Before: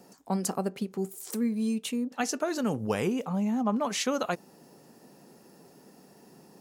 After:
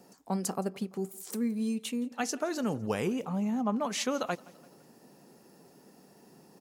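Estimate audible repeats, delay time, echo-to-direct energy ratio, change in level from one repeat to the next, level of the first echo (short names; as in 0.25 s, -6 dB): 3, 0.169 s, -22.0 dB, -5.5 dB, -23.5 dB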